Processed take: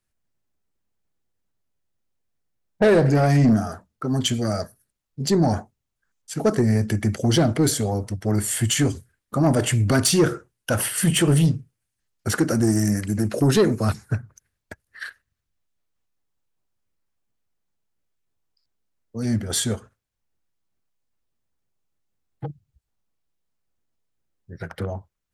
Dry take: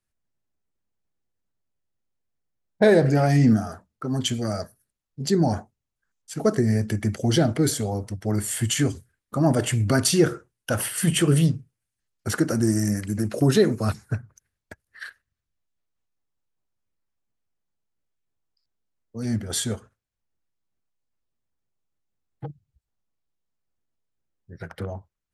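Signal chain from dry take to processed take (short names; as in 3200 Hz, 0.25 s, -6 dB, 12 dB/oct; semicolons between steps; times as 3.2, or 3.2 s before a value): soft clip -14 dBFS, distortion -15 dB; gain +3.5 dB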